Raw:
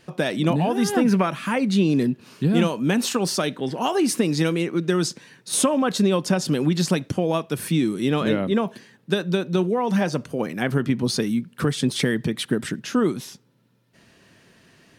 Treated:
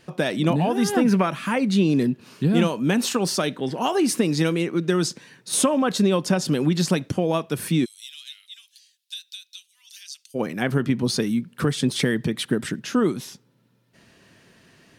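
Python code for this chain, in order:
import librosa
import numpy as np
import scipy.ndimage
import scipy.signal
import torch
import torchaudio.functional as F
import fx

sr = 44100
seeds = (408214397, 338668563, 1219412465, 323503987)

y = fx.cheby2_highpass(x, sr, hz=590.0, order=4, stop_db=80, at=(7.84, 10.34), fade=0.02)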